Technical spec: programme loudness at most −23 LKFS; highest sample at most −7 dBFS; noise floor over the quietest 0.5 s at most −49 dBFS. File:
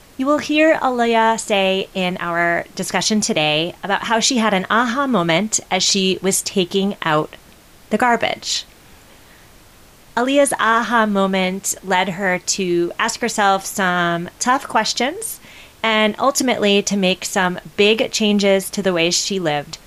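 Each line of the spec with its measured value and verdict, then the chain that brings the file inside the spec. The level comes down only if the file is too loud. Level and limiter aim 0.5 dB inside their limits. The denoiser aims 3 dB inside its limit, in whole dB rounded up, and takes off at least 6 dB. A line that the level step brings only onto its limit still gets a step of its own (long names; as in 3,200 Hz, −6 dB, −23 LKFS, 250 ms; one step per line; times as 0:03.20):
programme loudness −17.5 LKFS: out of spec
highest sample −4.0 dBFS: out of spec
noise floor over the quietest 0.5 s −46 dBFS: out of spec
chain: level −6 dB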